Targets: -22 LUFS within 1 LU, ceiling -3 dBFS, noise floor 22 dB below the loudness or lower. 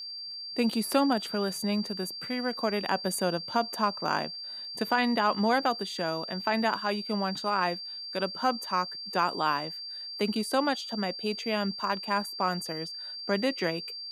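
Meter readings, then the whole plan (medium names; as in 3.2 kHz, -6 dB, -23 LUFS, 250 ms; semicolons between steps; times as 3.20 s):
tick rate 33 per s; steady tone 4.7 kHz; tone level -37 dBFS; loudness -29.5 LUFS; peak level -12.0 dBFS; loudness target -22.0 LUFS
-> de-click; band-stop 4.7 kHz, Q 30; trim +7.5 dB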